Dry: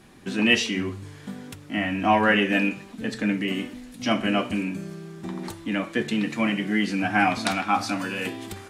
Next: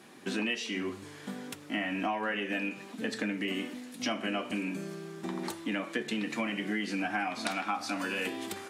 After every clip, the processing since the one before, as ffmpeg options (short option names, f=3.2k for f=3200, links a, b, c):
-af "highpass=240,acompressor=threshold=-29dB:ratio=10"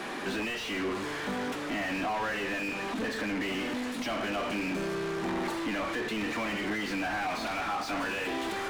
-filter_complex "[0:a]alimiter=level_in=0.5dB:limit=-24dB:level=0:latency=1:release=183,volume=-0.5dB,asplit=2[a][b];[b]highpass=f=720:p=1,volume=33dB,asoftclip=type=tanh:threshold=-24.5dB[c];[a][c]amix=inputs=2:normalize=0,lowpass=f=1.6k:p=1,volume=-6dB"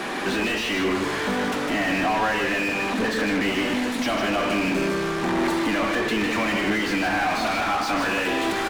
-af "aecho=1:1:154:0.501,volume=8dB"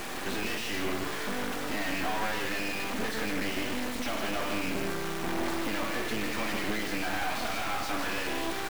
-af "acrusher=bits=3:dc=4:mix=0:aa=0.000001,volume=-4.5dB"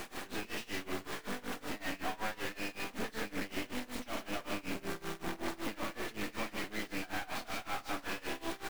-af "tremolo=f=5.3:d=0.92,volume=-4dB"